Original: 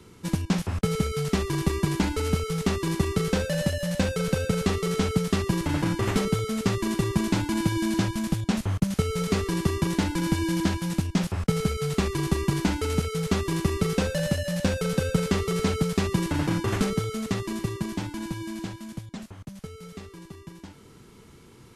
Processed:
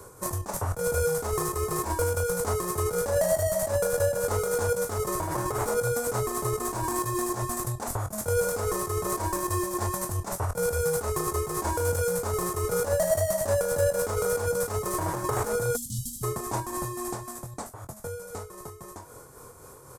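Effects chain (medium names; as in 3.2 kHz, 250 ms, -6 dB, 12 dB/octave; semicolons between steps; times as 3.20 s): tracing distortion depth 0.022 ms; tremolo 3.5 Hz, depth 44%; compressor with a negative ratio -30 dBFS, ratio -1; doubling 25 ms -9 dB; spectral selection erased 17.15–17.67 s, 250–2700 Hz; speed mistake 44.1 kHz file played as 48 kHz; FFT filter 130 Hz 0 dB, 200 Hz -12 dB, 600 Hz +9 dB, 1.1 kHz +9 dB, 3 kHz -13 dB, 8.2 kHz +11 dB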